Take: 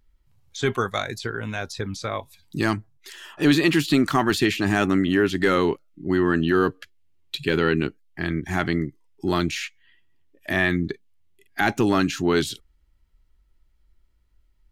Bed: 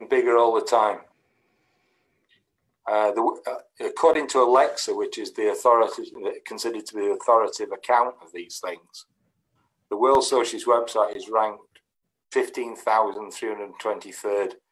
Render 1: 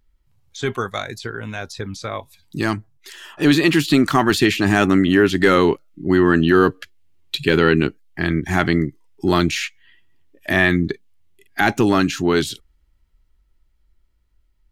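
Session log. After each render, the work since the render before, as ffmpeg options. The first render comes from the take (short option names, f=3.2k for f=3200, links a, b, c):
-af "dynaudnorm=f=660:g=11:m=8.5dB"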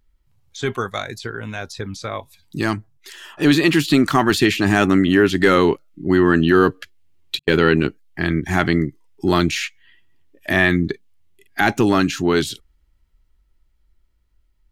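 -filter_complex "[0:a]asettb=1/sr,asplit=3[a][b][c];[a]atrim=end=7.394[d];[b]atrim=start=7.39:end=7.84,asetpts=PTS-STARTPTS,afade=t=in:d=0.004:c=qsin,afade=t=out:st=0.446:d=0.004:c=qsin,agate=range=-46dB:threshold=-18dB:ratio=16:release=100:detection=peak[e];[c]atrim=start=7.836[f];[d][e]acrossfade=d=0.004:c1=hsin:c2=qsin[g];[g][f]acrossfade=d=0.004:c1=qsin:c2=hsin"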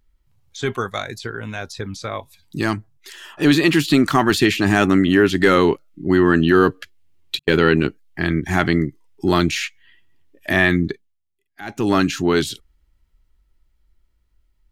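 -filter_complex "[0:a]asplit=3[a][b][c];[a]atrim=end=11.25,asetpts=PTS-STARTPTS,afade=t=out:st=10.86:d=0.39:c=qua:silence=0.0891251[d];[b]atrim=start=11.25:end=11.54,asetpts=PTS-STARTPTS,volume=-21dB[e];[c]atrim=start=11.54,asetpts=PTS-STARTPTS,afade=t=in:d=0.39:c=qua:silence=0.0891251[f];[d][e][f]concat=n=3:v=0:a=1"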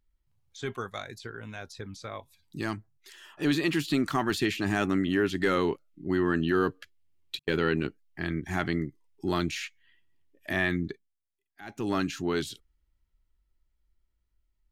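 -af "volume=-11.5dB"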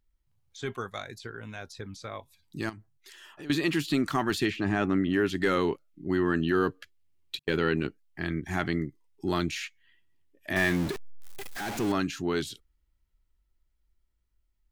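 -filter_complex "[0:a]asettb=1/sr,asplit=3[a][b][c];[a]atrim=end=2.694[d];[b]atrim=start=2.69:end=3.5,asetpts=PTS-STARTPTS,afade=t=in:d=0.004:c=qsin,afade=t=out:st=0.806:d=0.004:c=qsin,acompressor=threshold=-40dB:ratio=6:attack=3.2:release=140:knee=1:detection=peak[e];[c]atrim=start=3.496[f];[d][e]acrossfade=d=0.004:c1=hsin:c2=qsin[g];[g][f]acrossfade=d=0.004:c1=qsin:c2=hsin,asettb=1/sr,asplit=3[h][i][j];[h]atrim=end=4.504[k];[i]atrim=start=4.5:end=5.14,asetpts=PTS-STARTPTS,afade=t=in:d=0.004:c=qsin,afade=t=out:st=0.636:d=0.004:c=qsin,aemphasis=mode=reproduction:type=75fm[l];[j]atrim=start=5.136[m];[k][l]acrossfade=d=0.004:c1=hsin:c2=qsin[n];[n][m]acrossfade=d=0.004:c1=qsin:c2=hsin,asettb=1/sr,asplit=3[o][p][q];[o]atrim=end=10.564[r];[p]atrim=start=10.56:end=11.92,asetpts=PTS-STARTPTS,afade=t=in:d=0.004:c=qsin,afade=t=out:st=1.356:d=0.004:c=qsin,aeval=exprs='val(0)+0.5*0.0316*sgn(val(0))':c=same[s];[q]atrim=start=11.916[t];[r][s]acrossfade=d=0.004:c1=hsin:c2=qsin[u];[u][t]acrossfade=d=0.004:c1=qsin:c2=hsin"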